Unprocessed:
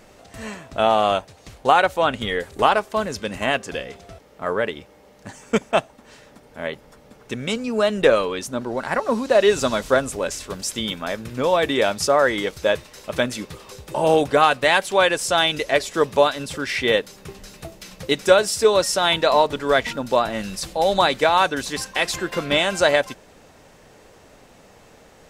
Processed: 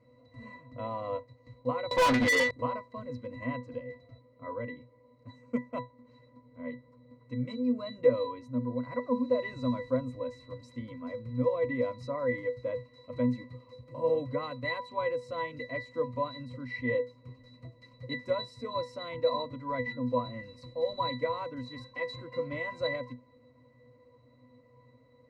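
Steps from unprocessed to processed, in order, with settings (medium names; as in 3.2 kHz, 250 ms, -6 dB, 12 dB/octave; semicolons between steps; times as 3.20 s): pitch-class resonator B, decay 0.21 s; 1.91–2.51 s: overdrive pedal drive 34 dB, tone 5.5 kHz, clips at -19.5 dBFS; trim +2.5 dB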